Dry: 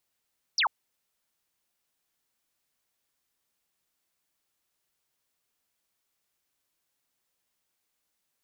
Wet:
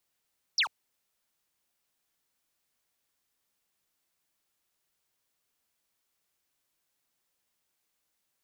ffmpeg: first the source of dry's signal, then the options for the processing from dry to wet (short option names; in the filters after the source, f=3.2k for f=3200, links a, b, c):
-f lavfi -i "aevalsrc='0.0841*clip(t/0.002,0,1)*clip((0.09-t)/0.002,0,1)*sin(2*PI*6000*0.09/log(760/6000)*(exp(log(760/6000)*t/0.09)-1))':d=0.09:s=44100"
-filter_complex "[0:a]acrossover=split=160|1900[a][b][c];[b]asoftclip=type=hard:threshold=-36dB[d];[a][d][c]amix=inputs=3:normalize=0"